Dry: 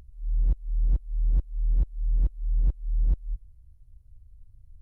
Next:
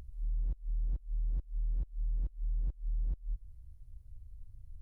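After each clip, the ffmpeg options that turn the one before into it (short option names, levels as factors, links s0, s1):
-af "acompressor=threshold=0.0224:ratio=5,volume=1.12"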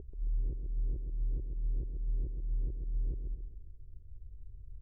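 -af "lowpass=f=400:t=q:w=4.9,aecho=1:1:134|268|402|536|670:0.531|0.234|0.103|0.0452|0.0199"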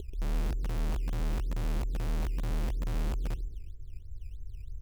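-filter_complex "[0:a]asplit=2[s0][s1];[s1]aeval=exprs='(mod(39.8*val(0)+1,2)-1)/39.8':c=same,volume=0.531[s2];[s0][s2]amix=inputs=2:normalize=0,acrusher=samples=12:mix=1:aa=0.000001:lfo=1:lforange=12:lforate=3.1,volume=1.41"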